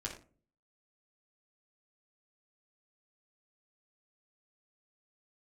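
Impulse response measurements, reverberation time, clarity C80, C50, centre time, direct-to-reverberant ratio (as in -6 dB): 0.40 s, 12.0 dB, 7.5 dB, 21 ms, -3.5 dB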